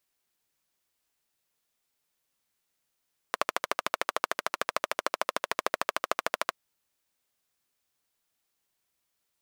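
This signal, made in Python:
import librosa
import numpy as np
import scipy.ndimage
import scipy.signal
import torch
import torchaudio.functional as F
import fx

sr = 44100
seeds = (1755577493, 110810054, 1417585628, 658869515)

y = fx.engine_single(sr, seeds[0], length_s=3.22, rpm=1600, resonances_hz=(630.0, 1100.0))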